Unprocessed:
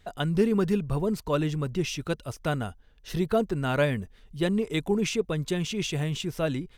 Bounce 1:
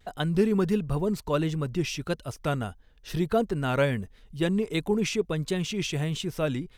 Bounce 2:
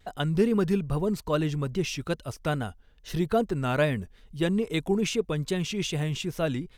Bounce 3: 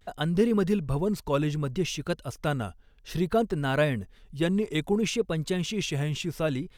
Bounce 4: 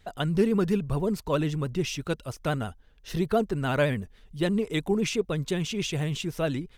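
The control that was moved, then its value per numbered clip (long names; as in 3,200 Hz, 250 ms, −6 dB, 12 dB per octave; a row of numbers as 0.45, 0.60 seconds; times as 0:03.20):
pitch vibrato, speed: 1.5, 2.4, 0.61, 14 Hertz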